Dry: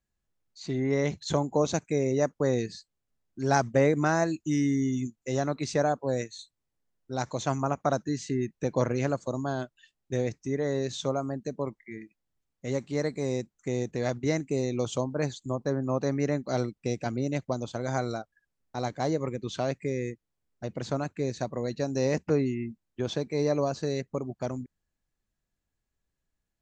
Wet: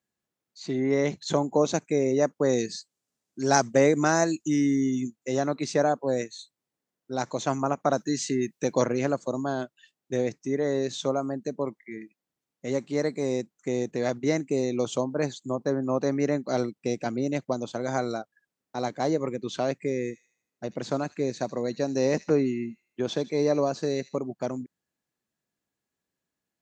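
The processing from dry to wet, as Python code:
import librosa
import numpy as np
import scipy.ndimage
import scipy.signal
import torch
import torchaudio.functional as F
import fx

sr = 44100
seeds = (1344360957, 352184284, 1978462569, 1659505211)

y = fx.peak_eq(x, sr, hz=7000.0, db=8.5, octaves=1.5, at=(2.49, 4.48))
y = fx.high_shelf(y, sr, hz=2700.0, db=9.5, at=(7.97, 8.85))
y = fx.echo_wet_highpass(y, sr, ms=79, feedback_pct=45, hz=3000.0, wet_db=-11.5, at=(20.03, 24.17), fade=0.02)
y = scipy.signal.sosfilt(scipy.signal.butter(2, 210.0, 'highpass', fs=sr, output='sos'), y)
y = fx.low_shelf(y, sr, hz=390.0, db=4.0)
y = y * 10.0 ** (1.5 / 20.0)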